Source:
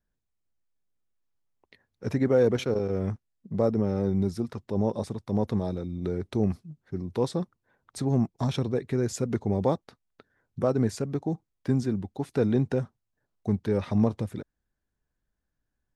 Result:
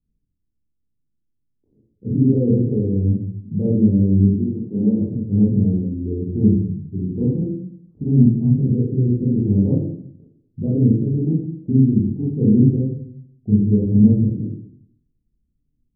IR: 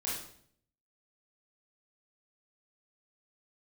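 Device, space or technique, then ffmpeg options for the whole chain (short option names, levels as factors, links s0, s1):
next room: -filter_complex "[0:a]asettb=1/sr,asplit=3[s0][s1][s2];[s0]atrim=end=4.324[s3];[s1]atrim=start=4.32:end=4.99,asetpts=PTS-STARTPTS,afade=t=in:d=0.004:c=qsin,afade=t=out:st=0.666:d=0.004:c=qsin,highpass=f=150:w=0.5412,highpass=f=150:w=1.3066[s4];[s2]atrim=start=4.986[s5];[s3][s4]acrossfade=d=0.004:c1=hsin:c2=qsin[s6];[s6][s5]acrossfade=d=0.004:c1=qsin:c2=hsin,lowpass=f=320:w=0.5412,lowpass=f=320:w=1.3066[s7];[1:a]atrim=start_sample=2205[s8];[s7][s8]afir=irnorm=-1:irlink=0,volume=2.51"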